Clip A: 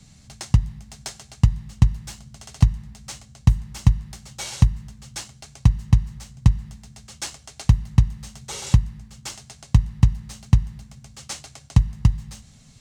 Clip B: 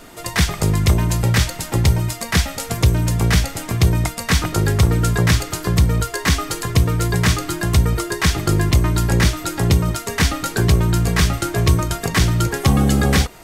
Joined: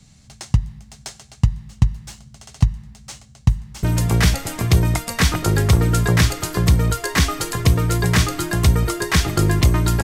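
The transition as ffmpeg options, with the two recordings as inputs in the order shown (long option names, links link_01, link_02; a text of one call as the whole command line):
ffmpeg -i cue0.wav -i cue1.wav -filter_complex "[0:a]apad=whole_dur=10.03,atrim=end=10.03,atrim=end=3.832[link_01];[1:a]atrim=start=2.928:end=9.13[link_02];[link_01][link_02]acrossfade=duration=0.004:curve1=hsin:curve2=hsin,asplit=2[link_03][link_04];[link_04]afade=type=in:start_time=3.56:duration=0.01,afade=type=out:start_time=3.83:duration=0.01,aecho=0:1:500|1000|1500:0.944061|0.141609|0.0212414[link_05];[link_03][link_05]amix=inputs=2:normalize=0" out.wav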